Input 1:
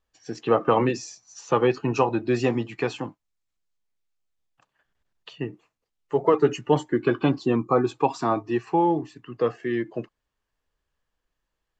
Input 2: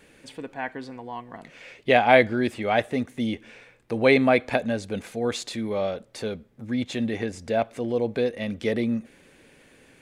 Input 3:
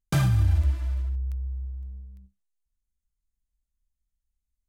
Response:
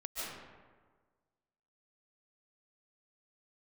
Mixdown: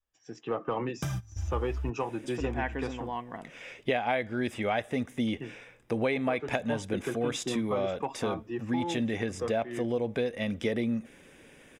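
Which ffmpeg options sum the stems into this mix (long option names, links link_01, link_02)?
-filter_complex "[0:a]acontrast=59,volume=-16dB,asplit=2[link_01][link_02];[1:a]adelay=2000,volume=0dB[link_03];[2:a]acompressor=threshold=-25dB:ratio=6,adelay=900,volume=-5dB,asplit=3[link_04][link_05][link_06];[link_04]atrim=end=1.9,asetpts=PTS-STARTPTS,afade=type=out:start_time=1.896:duration=0.004:curve=hsin[link_07];[link_05]atrim=start=1.9:end=2.4,asetpts=PTS-STARTPTS,volume=0[link_08];[link_06]atrim=start=2.4,asetpts=PTS-STARTPTS,afade=type=in:duration=0.004:curve=hsin[link_09];[link_07][link_08][link_09]concat=n=3:v=0:a=1[link_10];[link_02]apad=whole_len=246230[link_11];[link_10][link_11]sidechaingate=range=-20dB:threshold=-56dB:ratio=16:detection=peak[link_12];[link_01][link_03]amix=inputs=2:normalize=0,adynamicequalizer=threshold=0.0251:dfrequency=340:dqfactor=1:tfrequency=340:tqfactor=1:attack=5:release=100:ratio=0.375:range=2:mode=cutabove:tftype=bell,acompressor=threshold=-25dB:ratio=8,volume=0dB[link_13];[link_12][link_13]amix=inputs=2:normalize=0,asuperstop=centerf=4300:order=4:qfactor=6.1"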